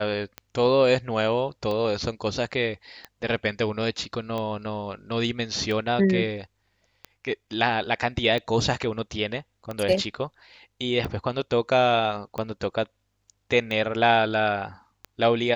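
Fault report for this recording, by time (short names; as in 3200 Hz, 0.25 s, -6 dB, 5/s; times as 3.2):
tick 45 rpm -18 dBFS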